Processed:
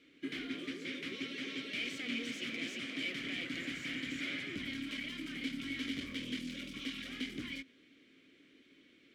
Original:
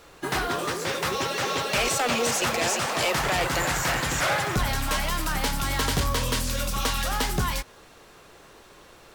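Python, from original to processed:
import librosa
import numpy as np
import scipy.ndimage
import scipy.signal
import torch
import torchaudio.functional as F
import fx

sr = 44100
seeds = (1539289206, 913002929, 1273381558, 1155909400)

y = np.minimum(x, 2.0 * 10.0 ** (-25.5 / 20.0) - x)
y = fx.vowel_filter(y, sr, vowel='i')
y = y * librosa.db_to_amplitude(2.0)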